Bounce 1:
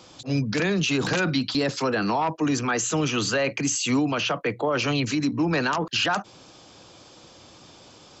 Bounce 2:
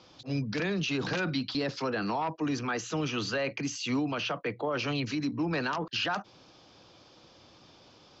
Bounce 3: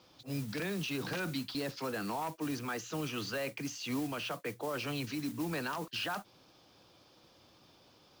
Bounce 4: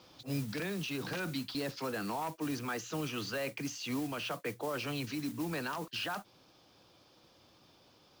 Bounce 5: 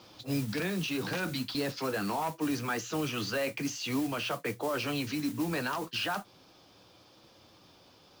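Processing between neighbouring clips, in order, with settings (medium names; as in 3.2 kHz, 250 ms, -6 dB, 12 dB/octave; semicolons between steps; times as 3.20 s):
steep low-pass 5.8 kHz 36 dB/octave; trim -7 dB
modulation noise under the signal 15 dB; trim -6 dB
gain riding 0.5 s
flange 0.69 Hz, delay 8.8 ms, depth 2.6 ms, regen -52%; trim +8.5 dB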